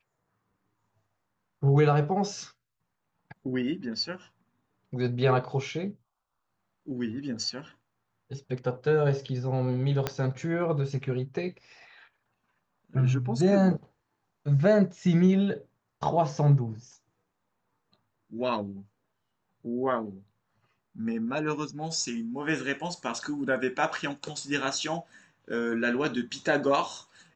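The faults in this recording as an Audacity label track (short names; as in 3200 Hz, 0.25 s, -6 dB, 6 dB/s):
10.070000	10.070000	pop -12 dBFS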